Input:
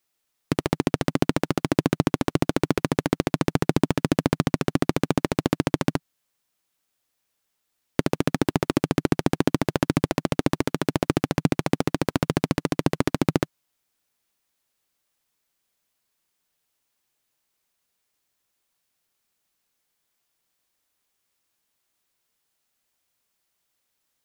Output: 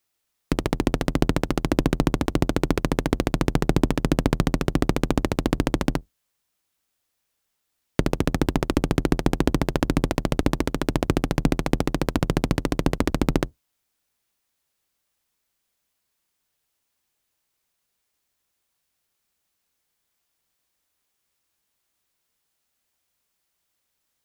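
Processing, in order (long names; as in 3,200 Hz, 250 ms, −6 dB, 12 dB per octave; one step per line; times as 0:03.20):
sub-octave generator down 2 octaves, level −2 dB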